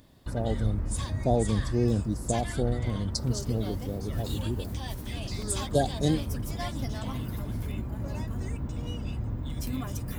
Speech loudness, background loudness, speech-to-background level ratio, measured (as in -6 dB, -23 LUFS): -30.5 LUFS, -34.5 LUFS, 4.0 dB